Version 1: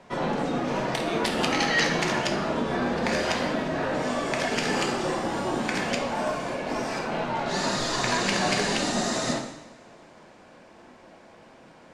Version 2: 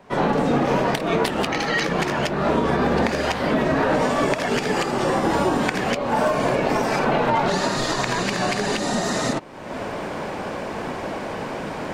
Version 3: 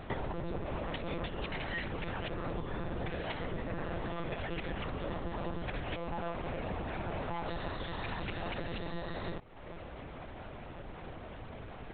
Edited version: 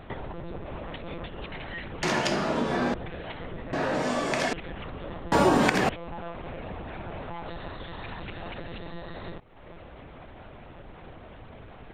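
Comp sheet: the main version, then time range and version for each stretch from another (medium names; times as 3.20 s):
3
2.03–2.94 s: from 1
3.73–4.53 s: from 1
5.32–5.89 s: from 2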